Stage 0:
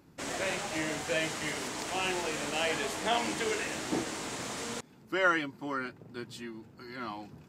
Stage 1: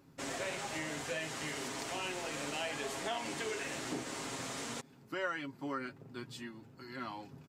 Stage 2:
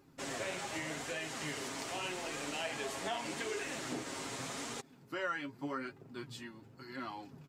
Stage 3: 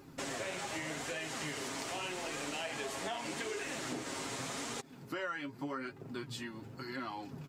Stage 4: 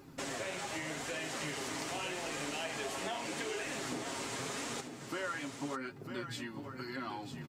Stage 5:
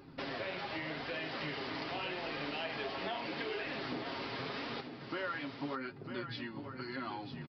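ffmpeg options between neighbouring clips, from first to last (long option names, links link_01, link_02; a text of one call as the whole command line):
ffmpeg -i in.wav -af "acompressor=threshold=-33dB:ratio=3,aecho=1:1:7.4:0.45,volume=-3.5dB" out.wav
ffmpeg -i in.wav -af "flanger=delay=2.4:depth=8.6:regen=50:speed=0.84:shape=sinusoidal,volume=3.5dB" out.wav
ffmpeg -i in.wav -af "acompressor=threshold=-50dB:ratio=2.5,volume=9dB" out.wav
ffmpeg -i in.wav -af "aecho=1:1:949:0.398" out.wav
ffmpeg -i in.wav -af "aresample=11025,aresample=44100" out.wav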